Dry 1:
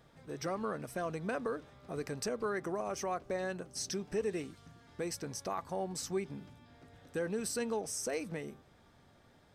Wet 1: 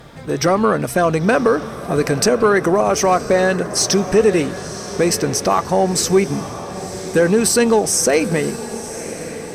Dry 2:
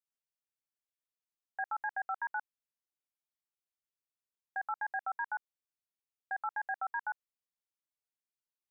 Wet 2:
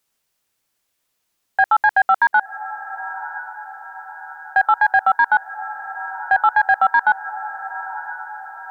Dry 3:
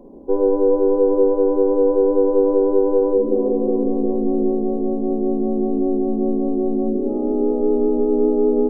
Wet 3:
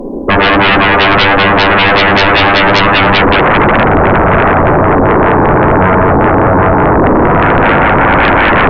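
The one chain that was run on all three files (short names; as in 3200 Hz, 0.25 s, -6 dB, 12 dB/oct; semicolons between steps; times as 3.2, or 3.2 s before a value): diffused feedback echo 1.007 s, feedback 54%, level -13.5 dB; sine folder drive 18 dB, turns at -4 dBFS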